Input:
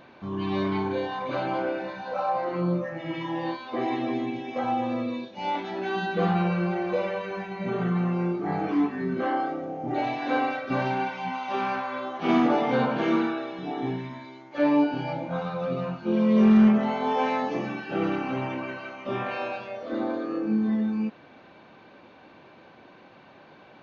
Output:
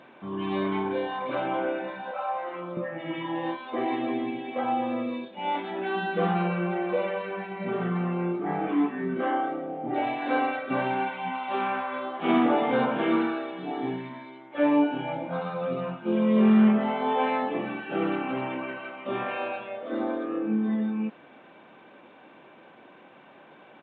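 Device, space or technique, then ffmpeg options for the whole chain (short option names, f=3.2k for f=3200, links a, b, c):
Bluetooth headset: -filter_complex "[0:a]asettb=1/sr,asplit=3[a][b][c];[a]atrim=end=2.114[d];[b]atrim=start=2.11:end=2.77,asetpts=PTS-STARTPTS,afade=t=in:d=0.004:c=qsin,afade=t=out:st=0.656:d=0.004:c=qsin,highpass=f=900:p=1[e];[c]atrim=start=2.766[f];[d][e]acrossfade=d=0.004:c1=hsin:c2=qsin[g];[g][f]acrossfade=d=0.004:c1=qsin:c2=hsin,highpass=180,aresample=8000,aresample=44100" -ar 16000 -c:a sbc -b:a 64k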